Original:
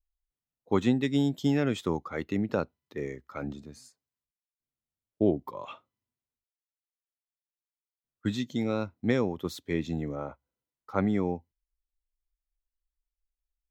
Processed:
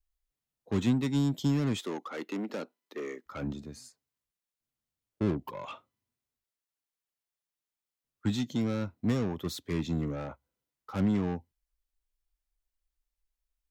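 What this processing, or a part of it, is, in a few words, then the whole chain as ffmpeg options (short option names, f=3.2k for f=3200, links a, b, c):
one-band saturation: -filter_complex "[0:a]acrossover=split=240|4400[a][b][c];[b]asoftclip=type=tanh:threshold=-37dB[d];[a][d][c]amix=inputs=3:normalize=0,asettb=1/sr,asplit=3[e][f][g];[e]atrim=end=1.794[h];[f]atrim=start=1.79:end=3.26,asetpts=PTS-STARTPTS,afade=t=in:d=0.004:c=qsin,afade=t=out:st=1.466:d=0.004:c=qsin,highpass=f=260:w=0.5412,highpass=f=260:w=1.3066[i];[g]atrim=start=3.256[j];[h][i]acrossfade=d=0.004:c1=hsin:c2=qsin[k];[k][j]acrossfade=d=0.004:c1=qsin:c2=hsin,volume=2.5dB"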